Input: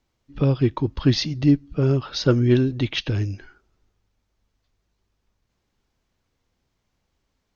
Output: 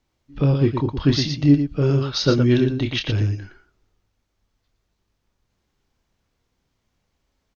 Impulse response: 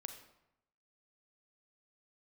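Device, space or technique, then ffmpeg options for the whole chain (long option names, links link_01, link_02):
slapback doubling: -filter_complex "[0:a]asplit=3[link_01][link_02][link_03];[link_02]adelay=28,volume=-7dB[link_04];[link_03]adelay=116,volume=-7dB[link_05];[link_01][link_04][link_05]amix=inputs=3:normalize=0,asettb=1/sr,asplit=3[link_06][link_07][link_08];[link_06]atrim=end=1.694[link_09];[link_07]atrim=start=1.69:end=2.64,asetpts=PTS-STARTPTS,afade=type=in:duration=0.004:curve=qsin,afade=type=out:start_time=0.946:duration=0.004:curve=qsin,equalizer=frequency=4400:width=0.59:gain=3.5[link_10];[link_08]atrim=start=2.636[link_11];[link_09][link_10]acrossfade=duration=0.004:curve1=hsin:curve2=qsin[link_12];[link_12][link_11]acrossfade=duration=0.004:curve1=qsin:curve2=hsin"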